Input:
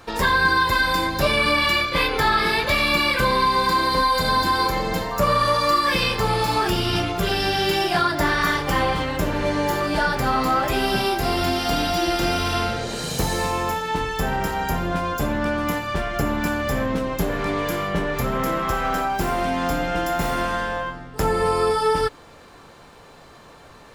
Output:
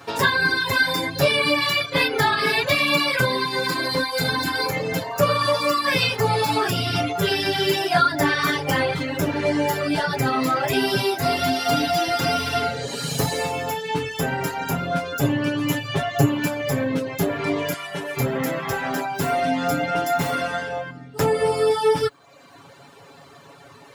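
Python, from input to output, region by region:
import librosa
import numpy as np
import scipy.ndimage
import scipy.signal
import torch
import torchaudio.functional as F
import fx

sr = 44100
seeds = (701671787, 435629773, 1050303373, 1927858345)

y = fx.chain(x, sr, fx.peak_eq(hz=120.0, db=5.0, octaves=0.22),
    fx.comb(ms=7.5, depth=0.74), at=(15.23, 16.46))
y = fx.chain(y, sr, fx.cvsd(bps=64000),
    fx.low_shelf(hz=490.0, db=-11.5), at=(17.73, 18.17))
y = fx.dereverb_blind(y, sr, rt60_s=0.94)
y = scipy.signal.sosfilt(scipy.signal.butter(4, 77.0, 'highpass', fs=sr, output='sos'), y)
y = y + 0.87 * np.pad(y, (int(7.2 * sr / 1000.0), 0))[:len(y)]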